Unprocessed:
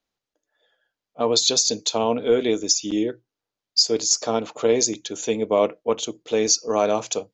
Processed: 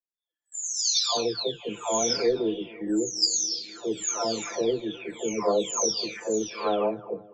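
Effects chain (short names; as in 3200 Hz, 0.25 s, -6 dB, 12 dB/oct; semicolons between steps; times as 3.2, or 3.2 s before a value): spectral delay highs early, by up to 0.907 s; gate with hold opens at -41 dBFS; on a send: darkening echo 0.257 s, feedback 75%, low-pass 1200 Hz, level -20.5 dB; on the sum: gain -1.5 dB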